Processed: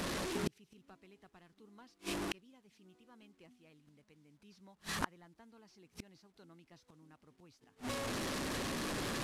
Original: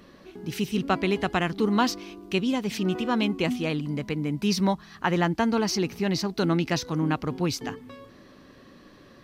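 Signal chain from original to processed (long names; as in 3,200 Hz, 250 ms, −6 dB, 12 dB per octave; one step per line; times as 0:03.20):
linear delta modulator 64 kbit/s, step −36 dBFS
harmonic and percussive parts rebalanced percussive +3 dB
gate with flip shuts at −24 dBFS, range −39 dB
level +2 dB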